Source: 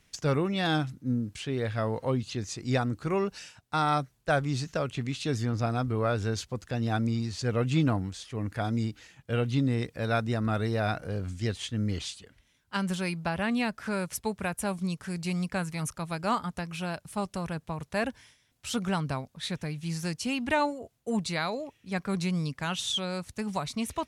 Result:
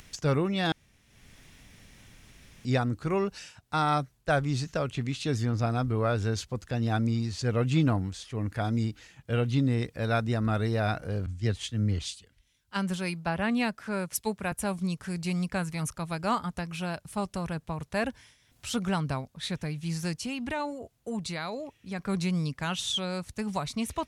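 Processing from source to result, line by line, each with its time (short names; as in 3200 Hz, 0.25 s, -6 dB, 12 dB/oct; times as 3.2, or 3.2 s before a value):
0.72–2.65 room tone
11.26–14.52 three-band expander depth 70%
20.18–21.99 compressor 2:1, threshold -33 dBFS
whole clip: low shelf 70 Hz +6.5 dB; upward compressor, threshold -42 dBFS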